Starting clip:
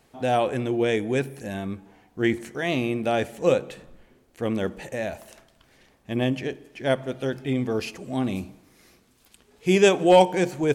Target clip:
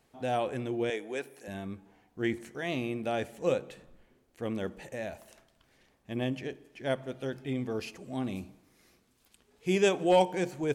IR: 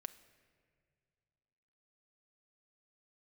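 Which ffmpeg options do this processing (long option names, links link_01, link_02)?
-filter_complex "[0:a]asettb=1/sr,asplit=3[link_01][link_02][link_03];[link_01]atrim=end=0.904[link_04];[link_02]atrim=start=0.9:end=1.48,asetpts=PTS-STARTPTS,afade=type=in:duration=0.004:curve=qsin,afade=type=out:start_time=0.576:duration=0.004:curve=qsin,highpass=410[link_05];[link_03]atrim=start=1.476[link_06];[link_04][link_05]acrossfade=duration=0.004:curve1=hsin:curve2=qsin[link_07];[link_07][link_06]acrossfade=duration=0.004:curve1=qsin:curve2=hsin,volume=-8dB"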